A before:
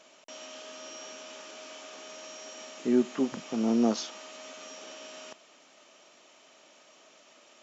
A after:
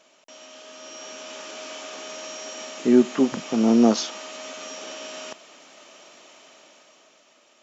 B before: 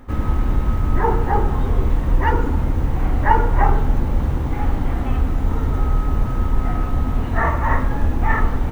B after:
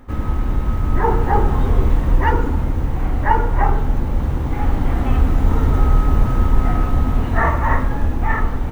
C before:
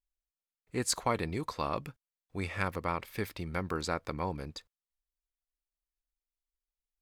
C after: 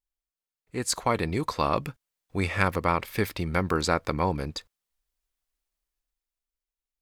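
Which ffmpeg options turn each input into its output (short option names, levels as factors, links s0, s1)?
-af "dynaudnorm=f=130:g=17:m=3.16,volume=0.891"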